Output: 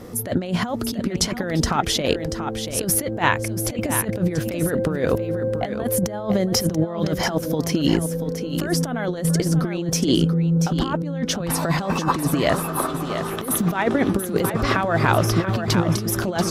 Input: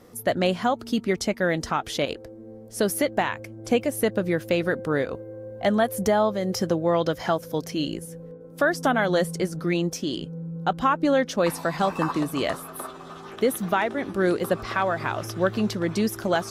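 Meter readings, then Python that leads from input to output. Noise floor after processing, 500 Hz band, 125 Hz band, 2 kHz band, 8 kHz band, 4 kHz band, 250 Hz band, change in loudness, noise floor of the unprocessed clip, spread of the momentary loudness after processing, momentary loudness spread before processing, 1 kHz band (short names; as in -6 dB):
-30 dBFS, 0.0 dB, +9.5 dB, +1.0 dB, +10.0 dB, +6.0 dB, +4.5 dB, +3.0 dB, -43 dBFS, 6 LU, 12 LU, +1.0 dB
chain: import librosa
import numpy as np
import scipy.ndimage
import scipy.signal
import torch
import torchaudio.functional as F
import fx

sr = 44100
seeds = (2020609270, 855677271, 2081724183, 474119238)

y = fx.low_shelf(x, sr, hz=350.0, db=6.0)
y = fx.over_compress(y, sr, threshold_db=-25.0, ratio=-0.5)
y = y + 10.0 ** (-8.5 / 20.0) * np.pad(y, (int(685 * sr / 1000.0), 0))[:len(y)]
y = y * librosa.db_to_amplitude(5.0)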